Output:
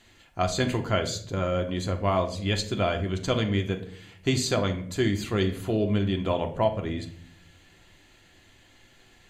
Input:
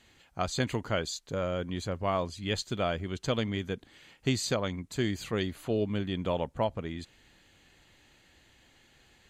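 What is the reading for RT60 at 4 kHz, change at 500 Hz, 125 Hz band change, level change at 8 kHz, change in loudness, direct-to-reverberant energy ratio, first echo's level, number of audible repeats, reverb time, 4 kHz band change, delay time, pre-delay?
0.40 s, +5.0 dB, +6.5 dB, +4.0 dB, +5.0 dB, 4.0 dB, no echo, no echo, 0.60 s, +4.0 dB, no echo, 3 ms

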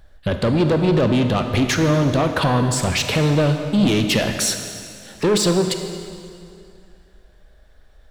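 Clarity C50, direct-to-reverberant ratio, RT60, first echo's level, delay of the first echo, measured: 7.0 dB, 6.0 dB, 2.4 s, no echo, no echo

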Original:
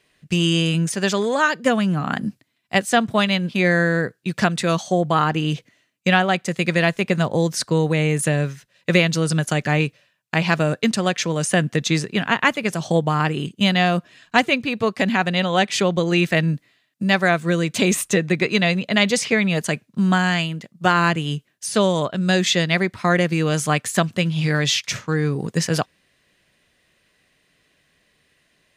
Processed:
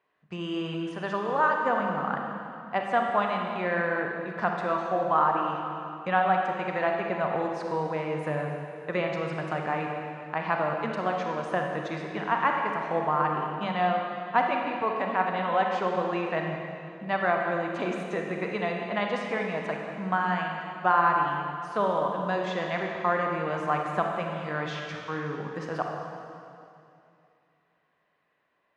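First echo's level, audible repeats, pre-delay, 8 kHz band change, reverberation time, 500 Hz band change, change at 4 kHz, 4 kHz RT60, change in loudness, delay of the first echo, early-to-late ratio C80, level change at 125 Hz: no echo, no echo, 32 ms, under -25 dB, 2.6 s, -6.5 dB, -18.5 dB, 2.4 s, -8.5 dB, no echo, 3.0 dB, -15.5 dB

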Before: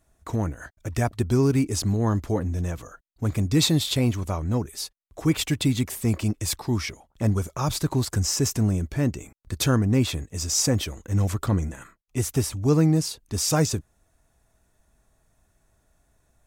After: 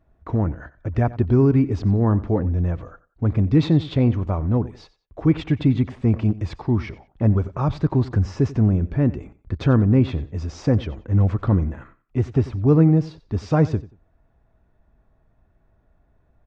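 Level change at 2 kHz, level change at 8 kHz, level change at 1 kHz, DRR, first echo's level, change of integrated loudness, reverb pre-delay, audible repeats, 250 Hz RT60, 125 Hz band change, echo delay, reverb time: -2.5 dB, under -20 dB, +1.5 dB, no reverb, -18.0 dB, +4.0 dB, no reverb, 2, no reverb, +5.0 dB, 91 ms, no reverb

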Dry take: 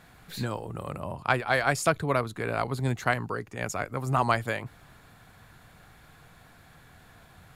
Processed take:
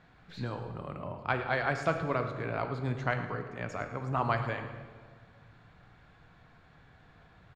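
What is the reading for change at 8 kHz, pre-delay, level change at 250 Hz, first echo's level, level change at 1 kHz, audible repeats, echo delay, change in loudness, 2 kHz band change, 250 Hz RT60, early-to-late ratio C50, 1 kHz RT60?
-18.5 dB, 6 ms, -4.0 dB, -14.0 dB, -5.0 dB, 1, 110 ms, -5.0 dB, -5.5 dB, 2.0 s, 7.5 dB, 1.5 s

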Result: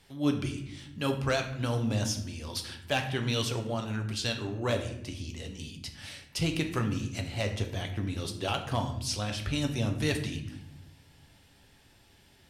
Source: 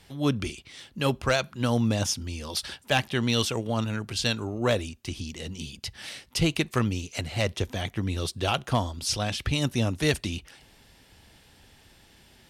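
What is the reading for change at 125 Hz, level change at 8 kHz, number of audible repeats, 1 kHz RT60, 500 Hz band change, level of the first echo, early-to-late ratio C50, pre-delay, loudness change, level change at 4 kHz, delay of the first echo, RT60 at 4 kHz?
-2.5 dB, -5.0 dB, no echo, 0.65 s, -4.5 dB, no echo, 9.0 dB, 7 ms, -4.0 dB, -5.0 dB, no echo, 0.55 s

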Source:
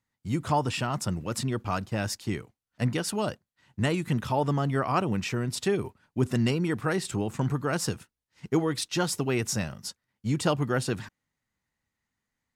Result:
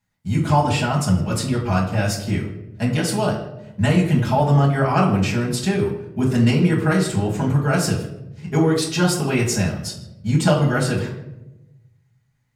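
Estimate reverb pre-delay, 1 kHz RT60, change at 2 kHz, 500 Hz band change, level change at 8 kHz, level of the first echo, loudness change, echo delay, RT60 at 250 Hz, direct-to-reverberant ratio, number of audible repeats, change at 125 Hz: 5 ms, 0.75 s, +8.0 dB, +7.5 dB, +6.5 dB, no echo, +9.0 dB, no echo, 1.3 s, -6.0 dB, no echo, +11.0 dB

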